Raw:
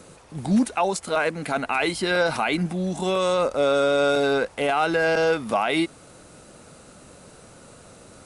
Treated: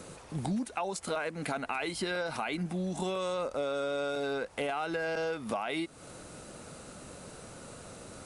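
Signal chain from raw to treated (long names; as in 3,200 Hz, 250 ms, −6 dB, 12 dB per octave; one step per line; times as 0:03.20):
downward compressor 6 to 1, threshold −31 dBFS, peak gain reduction 14 dB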